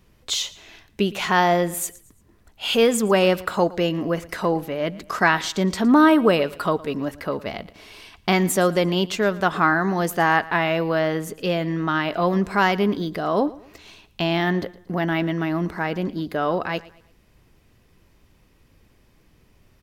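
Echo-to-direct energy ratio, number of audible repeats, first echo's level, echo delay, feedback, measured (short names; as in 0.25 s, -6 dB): -19.5 dB, 2, -20.0 dB, 0.114 s, 37%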